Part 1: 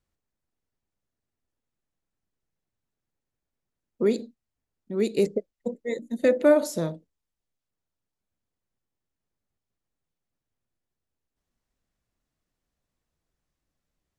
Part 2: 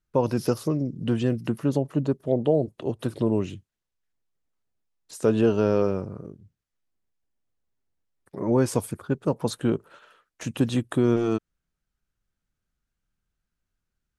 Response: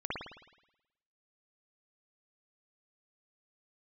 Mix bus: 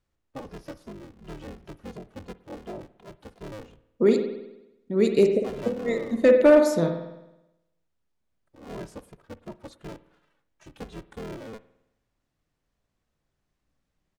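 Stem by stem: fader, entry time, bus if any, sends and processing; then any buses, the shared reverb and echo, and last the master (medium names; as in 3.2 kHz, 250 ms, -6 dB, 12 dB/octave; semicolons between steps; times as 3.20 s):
+1.0 dB, 0.00 s, send -7 dB, none
-14.0 dB, 0.20 s, send -21 dB, cycle switcher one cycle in 3, inverted; endless flanger 2.5 ms -2.8 Hz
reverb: on, RT60 0.95 s, pre-delay 53 ms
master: hard clipper -9 dBFS, distortion -22 dB; treble shelf 9.3 kHz -11.5 dB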